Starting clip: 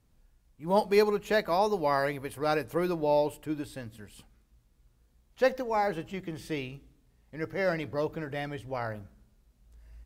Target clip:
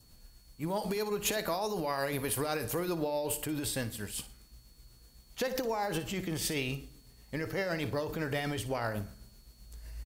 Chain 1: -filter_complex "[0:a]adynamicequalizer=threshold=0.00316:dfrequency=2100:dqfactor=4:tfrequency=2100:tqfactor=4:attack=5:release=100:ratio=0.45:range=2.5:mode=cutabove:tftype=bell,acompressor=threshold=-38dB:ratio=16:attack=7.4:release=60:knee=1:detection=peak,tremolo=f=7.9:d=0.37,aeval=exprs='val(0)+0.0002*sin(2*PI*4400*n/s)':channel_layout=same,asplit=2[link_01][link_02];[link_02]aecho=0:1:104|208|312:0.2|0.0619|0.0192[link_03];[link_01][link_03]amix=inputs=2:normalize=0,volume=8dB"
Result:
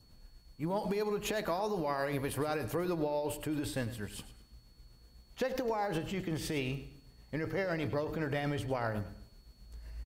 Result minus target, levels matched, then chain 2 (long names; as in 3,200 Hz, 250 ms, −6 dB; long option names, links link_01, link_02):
echo 46 ms late; 8,000 Hz band −8.5 dB
-filter_complex "[0:a]adynamicequalizer=threshold=0.00316:dfrequency=2100:dqfactor=4:tfrequency=2100:tqfactor=4:attack=5:release=100:ratio=0.45:range=2.5:mode=cutabove:tftype=bell,acompressor=threshold=-38dB:ratio=16:attack=7.4:release=60:knee=1:detection=peak,highshelf=frequency=3800:gain=11.5,tremolo=f=7.9:d=0.37,aeval=exprs='val(0)+0.0002*sin(2*PI*4400*n/s)':channel_layout=same,asplit=2[link_01][link_02];[link_02]aecho=0:1:58|116|174:0.2|0.0619|0.0192[link_03];[link_01][link_03]amix=inputs=2:normalize=0,volume=8dB"